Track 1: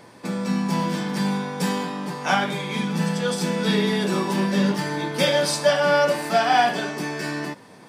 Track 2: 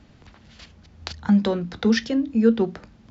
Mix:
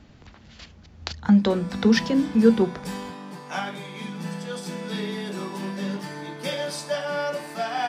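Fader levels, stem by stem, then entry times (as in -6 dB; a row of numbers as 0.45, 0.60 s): -9.0, +1.0 dB; 1.25, 0.00 s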